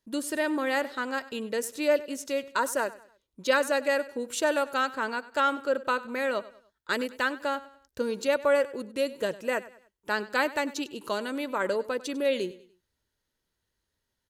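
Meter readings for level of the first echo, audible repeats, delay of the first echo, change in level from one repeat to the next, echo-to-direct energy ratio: -18.0 dB, 3, 98 ms, -8.5 dB, -17.5 dB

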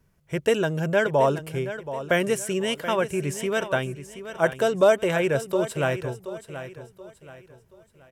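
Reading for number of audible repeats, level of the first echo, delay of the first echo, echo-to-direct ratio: 3, -12.0 dB, 0.728 s, -11.5 dB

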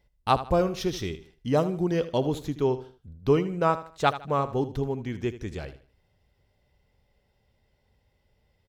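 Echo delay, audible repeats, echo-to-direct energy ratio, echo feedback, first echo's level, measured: 78 ms, 3, -13.5 dB, 32%, -14.0 dB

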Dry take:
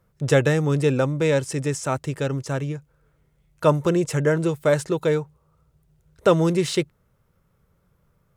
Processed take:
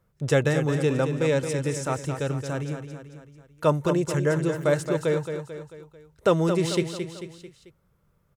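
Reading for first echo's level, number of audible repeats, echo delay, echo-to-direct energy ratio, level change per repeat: -8.0 dB, 4, 0.221 s, -7.0 dB, -6.0 dB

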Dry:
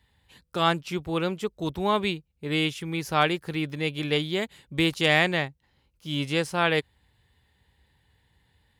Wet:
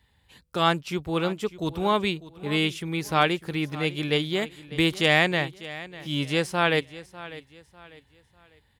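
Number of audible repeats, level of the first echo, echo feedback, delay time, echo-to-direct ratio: 2, -17.0 dB, 34%, 0.598 s, -16.5 dB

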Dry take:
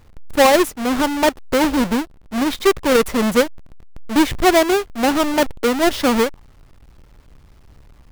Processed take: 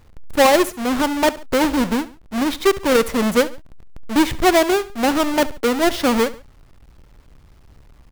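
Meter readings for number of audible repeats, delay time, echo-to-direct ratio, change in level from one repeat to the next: 2, 70 ms, -17.5 dB, -7.5 dB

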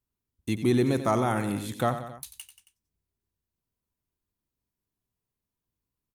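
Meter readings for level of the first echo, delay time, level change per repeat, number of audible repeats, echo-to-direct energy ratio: -11.0 dB, 91 ms, -4.5 dB, 3, -9.5 dB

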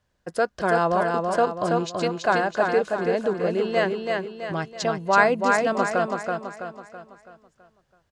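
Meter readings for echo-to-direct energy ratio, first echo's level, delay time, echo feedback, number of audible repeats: -2.5 dB, -3.5 dB, 0.329 s, 45%, 5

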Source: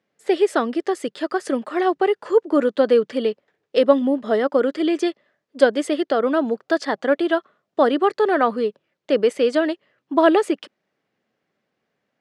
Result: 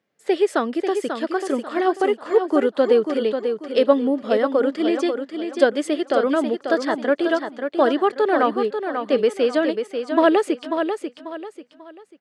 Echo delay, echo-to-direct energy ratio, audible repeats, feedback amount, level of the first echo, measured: 0.541 s, -6.5 dB, 3, 32%, -7.0 dB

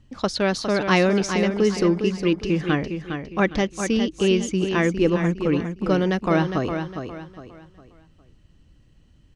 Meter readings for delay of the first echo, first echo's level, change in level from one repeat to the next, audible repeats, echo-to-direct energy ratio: 0.408 s, -7.5 dB, -9.5 dB, 3, -7.0 dB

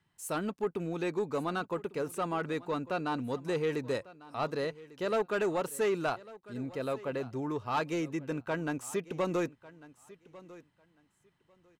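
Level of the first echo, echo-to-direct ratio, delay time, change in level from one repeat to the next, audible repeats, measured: -19.5 dB, -19.5 dB, 1.148 s, -15.0 dB, 2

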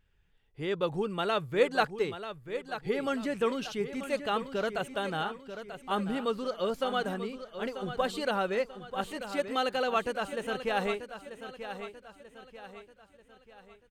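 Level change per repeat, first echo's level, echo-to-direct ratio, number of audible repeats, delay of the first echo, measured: -7.5 dB, -10.5 dB, -9.5 dB, 4, 0.938 s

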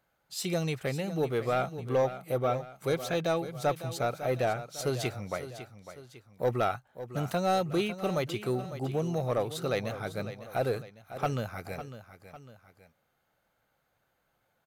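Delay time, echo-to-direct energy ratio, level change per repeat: 0.552 s, -11.5 dB, -6.5 dB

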